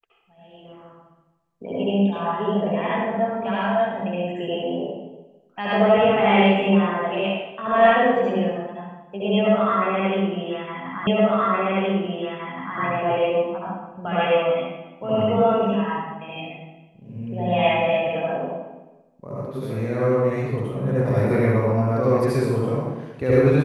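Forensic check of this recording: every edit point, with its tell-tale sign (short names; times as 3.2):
11.07 repeat of the last 1.72 s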